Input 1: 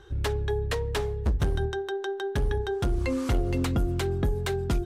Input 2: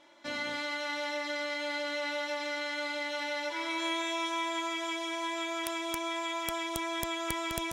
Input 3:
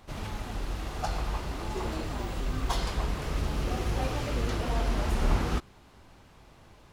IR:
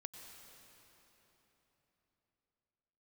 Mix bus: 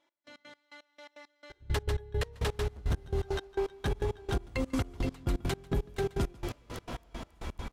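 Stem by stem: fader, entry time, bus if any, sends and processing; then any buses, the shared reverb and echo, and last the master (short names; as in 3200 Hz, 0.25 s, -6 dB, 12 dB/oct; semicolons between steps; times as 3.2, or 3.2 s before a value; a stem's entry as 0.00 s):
+1.0 dB, 1.50 s, no send, echo send -5 dB, dry
-15.0 dB, 0.00 s, no send, no echo send, dry
+1.0 dB, 2.25 s, no send, echo send -6 dB, compressor 12:1, threshold -35 dBFS, peak gain reduction 15.5 dB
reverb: off
echo: echo 0.144 s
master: step gate "x..x.x.." 168 bpm -24 dB; limiter -22 dBFS, peak gain reduction 8.5 dB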